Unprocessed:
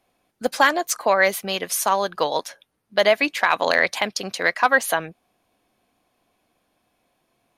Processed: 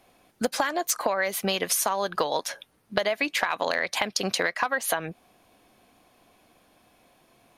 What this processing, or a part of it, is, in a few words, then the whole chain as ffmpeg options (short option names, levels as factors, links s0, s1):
serial compression, peaks first: -af "acompressor=threshold=0.0501:ratio=6,acompressor=threshold=0.0251:ratio=2.5,volume=2.66"